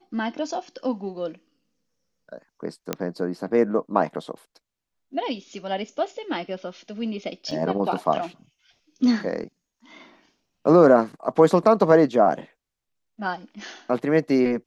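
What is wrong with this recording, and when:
2.93 pop -10 dBFS
7.51 gap 4.2 ms

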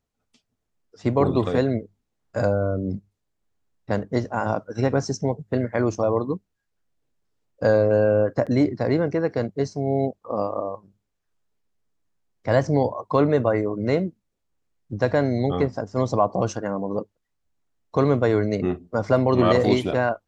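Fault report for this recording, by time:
8.46–8.47 gap 7.1 ms

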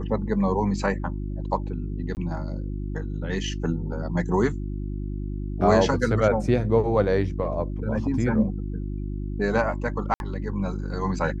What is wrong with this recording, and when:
hum 50 Hz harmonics 7 -30 dBFS
2.15–2.17 gap 19 ms
10.14–10.2 gap 61 ms

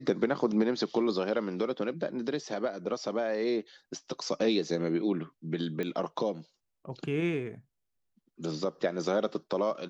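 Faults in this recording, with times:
5.83 pop -22 dBFS

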